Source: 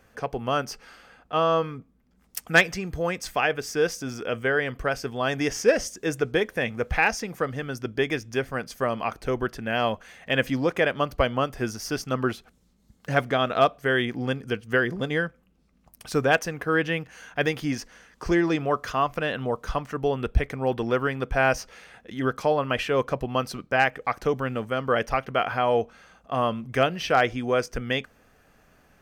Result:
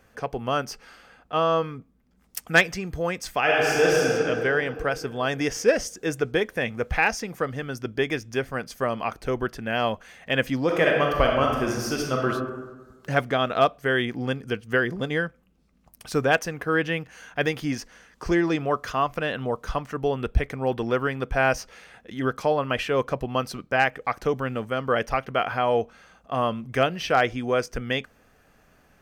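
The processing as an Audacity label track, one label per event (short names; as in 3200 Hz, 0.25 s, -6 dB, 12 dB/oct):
3.410000	4.040000	reverb throw, RT60 3 s, DRR -5.5 dB
10.640000	12.270000	reverb throw, RT60 1.3 s, DRR -0.5 dB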